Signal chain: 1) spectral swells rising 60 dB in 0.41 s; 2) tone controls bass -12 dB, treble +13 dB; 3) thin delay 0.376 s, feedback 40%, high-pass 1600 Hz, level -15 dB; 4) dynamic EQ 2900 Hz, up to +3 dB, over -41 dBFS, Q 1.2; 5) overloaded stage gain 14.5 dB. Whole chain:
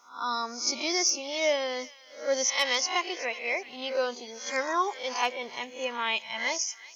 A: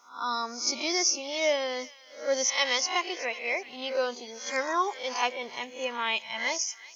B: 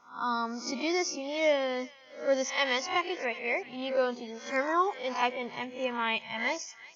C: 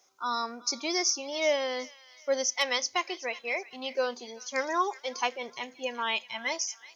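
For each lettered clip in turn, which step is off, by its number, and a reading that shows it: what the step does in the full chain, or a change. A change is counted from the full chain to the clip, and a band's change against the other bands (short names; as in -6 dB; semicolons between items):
5, crest factor change +4.0 dB; 2, 8 kHz band -11.0 dB; 1, 250 Hz band +1.5 dB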